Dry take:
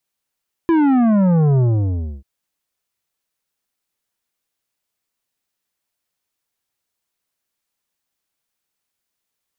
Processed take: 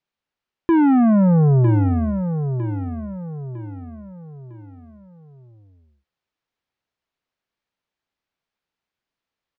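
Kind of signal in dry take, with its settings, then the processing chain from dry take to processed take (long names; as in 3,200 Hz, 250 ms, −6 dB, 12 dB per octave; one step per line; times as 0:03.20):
bass drop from 340 Hz, over 1.54 s, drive 10.5 dB, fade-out 0.64 s, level −12.5 dB
high-frequency loss of the air 190 metres
on a send: repeating echo 954 ms, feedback 40%, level −8.5 dB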